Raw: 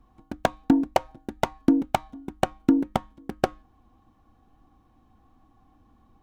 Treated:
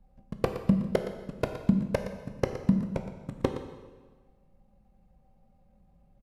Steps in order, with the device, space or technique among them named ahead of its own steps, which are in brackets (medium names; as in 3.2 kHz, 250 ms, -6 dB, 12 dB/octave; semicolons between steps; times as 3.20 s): monster voice (pitch shift -6 st; bass shelf 220 Hz +5 dB; delay 117 ms -12 dB; reverberation RT60 1.4 s, pre-delay 12 ms, DRR 6.5 dB); trim -7 dB